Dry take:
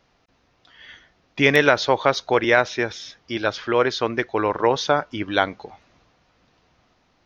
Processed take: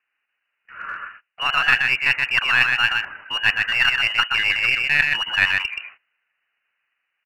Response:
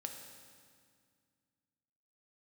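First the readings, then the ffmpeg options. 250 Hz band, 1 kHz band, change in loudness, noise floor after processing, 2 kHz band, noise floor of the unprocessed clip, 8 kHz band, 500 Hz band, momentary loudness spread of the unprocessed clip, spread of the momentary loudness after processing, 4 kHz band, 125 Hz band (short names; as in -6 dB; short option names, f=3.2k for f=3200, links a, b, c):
-19.0 dB, -4.0 dB, +2.5 dB, -77 dBFS, +7.0 dB, -64 dBFS, n/a, -23.0 dB, 10 LU, 16 LU, +7.5 dB, -7.5 dB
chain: -filter_complex "[0:a]areverse,acompressor=threshold=-26dB:ratio=10,areverse,highpass=f=280:w=0.5412,highpass=f=280:w=1.3066,highshelf=f=2.3k:g=-6,aecho=1:1:127:0.631,lowpass=f=2.7k:t=q:w=0.5098,lowpass=f=2.7k:t=q:w=0.6013,lowpass=f=2.7k:t=q:w=0.9,lowpass=f=2.7k:t=q:w=2.563,afreqshift=-3200,tremolo=f=26:d=0.182,equalizer=f=1.6k:w=1.8:g=11.5,agate=range=-24dB:threshold=-50dB:ratio=16:detection=peak,asplit=2[a][b];[b]aeval=exprs='clip(val(0),-1,0.0237)':c=same,volume=-4.5dB[c];[a][c]amix=inputs=2:normalize=0,volume=5dB"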